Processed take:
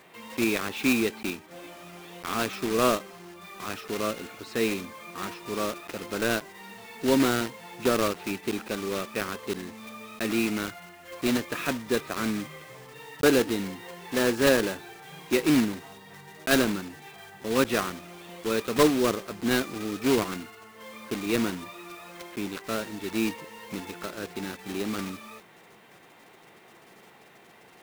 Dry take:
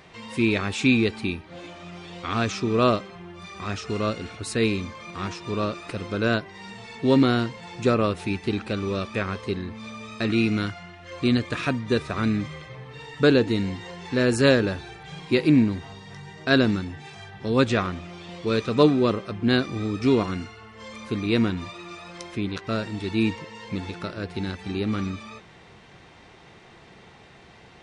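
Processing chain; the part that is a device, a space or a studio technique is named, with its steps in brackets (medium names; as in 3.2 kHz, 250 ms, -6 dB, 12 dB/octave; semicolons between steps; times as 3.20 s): early digital voice recorder (band-pass 220–3400 Hz; block-companded coder 3-bit); trim -2.5 dB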